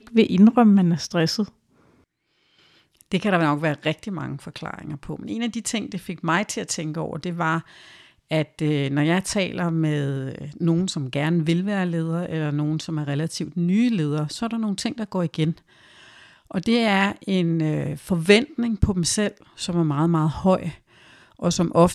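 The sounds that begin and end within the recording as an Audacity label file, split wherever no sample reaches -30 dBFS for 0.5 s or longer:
3.010000	7.600000	sound
8.310000	15.570000	sound
16.510000	20.710000	sound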